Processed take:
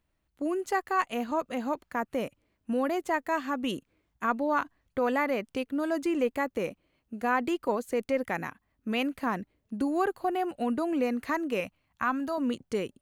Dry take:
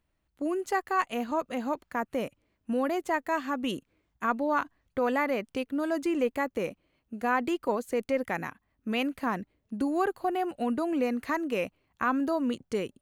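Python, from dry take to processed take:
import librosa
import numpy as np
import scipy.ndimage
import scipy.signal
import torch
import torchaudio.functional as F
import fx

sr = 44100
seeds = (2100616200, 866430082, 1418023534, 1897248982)

y = fx.peak_eq(x, sr, hz=400.0, db=-14.5, octaves=0.59, at=(11.6, 12.38))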